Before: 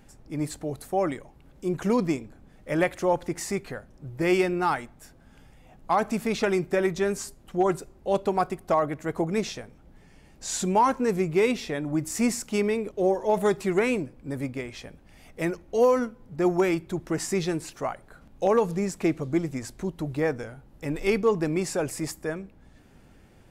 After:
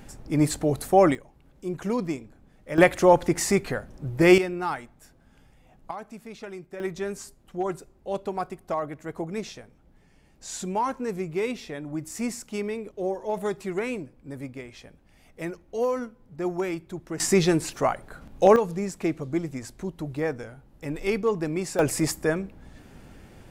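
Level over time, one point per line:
+8 dB
from 0:01.15 −3.5 dB
from 0:02.78 +7 dB
from 0:04.38 −4 dB
from 0:05.91 −14.5 dB
from 0:06.80 −5.5 dB
from 0:17.20 +6.5 dB
from 0:18.56 −2 dB
from 0:21.79 +6.5 dB

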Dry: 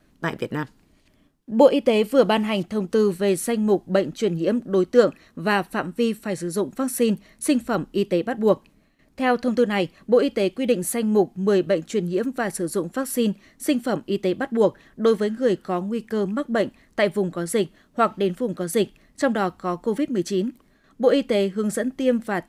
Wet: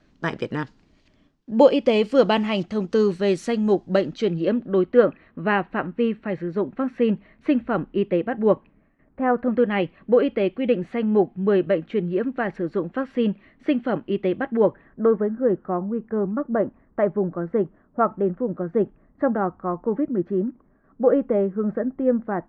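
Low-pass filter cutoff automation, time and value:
low-pass filter 24 dB per octave
0:03.95 6,200 Hz
0:05.03 2,600 Hz
0:08.51 2,600 Hz
0:09.31 1,500 Hz
0:09.68 2,800 Hz
0:14.45 2,800 Hz
0:15.14 1,400 Hz

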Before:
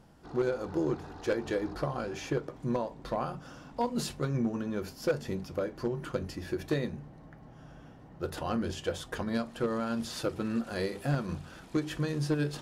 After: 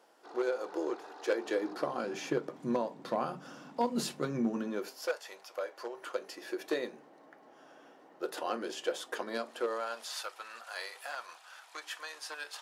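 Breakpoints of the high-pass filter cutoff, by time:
high-pass filter 24 dB per octave
0:01.18 390 Hz
0:02.23 180 Hz
0:04.59 180 Hz
0:05.20 690 Hz
0:06.80 330 Hz
0:09.50 330 Hz
0:10.25 780 Hz

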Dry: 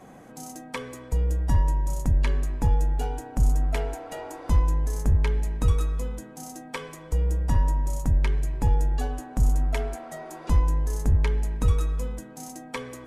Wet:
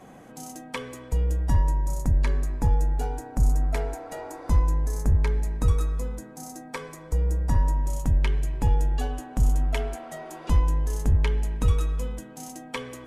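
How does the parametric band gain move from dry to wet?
parametric band 3,000 Hz 0.44 octaves
0:01.25 +3 dB
0:01.87 −7 dB
0:07.56 −7 dB
0:08.02 +5 dB

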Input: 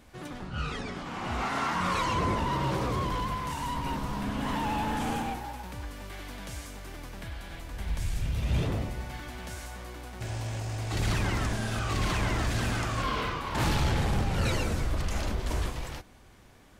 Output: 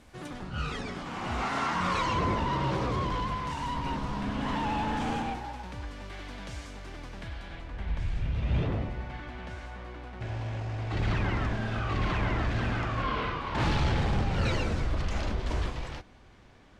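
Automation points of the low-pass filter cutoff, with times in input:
0:01.01 11,000 Hz
0:02.27 5,600 Hz
0:07.31 5,600 Hz
0:07.75 2,900 Hz
0:12.99 2,900 Hz
0:13.89 4,900 Hz

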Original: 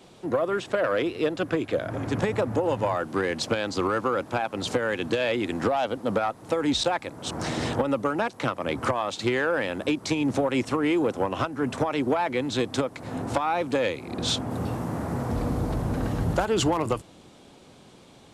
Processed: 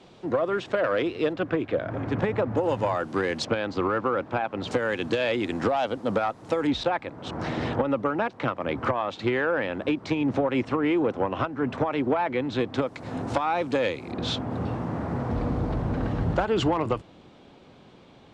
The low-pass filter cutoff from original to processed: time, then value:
5,000 Hz
from 0:01.33 2,800 Hz
from 0:02.57 6,700 Hz
from 0:03.45 2,800 Hz
from 0:04.71 6,700 Hz
from 0:06.67 2,900 Hz
from 0:12.82 6,200 Hz
from 0:14.12 3,500 Hz

